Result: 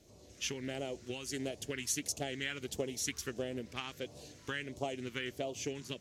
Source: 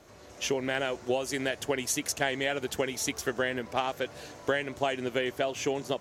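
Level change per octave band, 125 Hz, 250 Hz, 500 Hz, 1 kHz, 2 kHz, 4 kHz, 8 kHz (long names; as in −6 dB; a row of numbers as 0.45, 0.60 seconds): −4.0, −7.0, −10.5, −13.0, −10.0, −6.0, −4.5 decibels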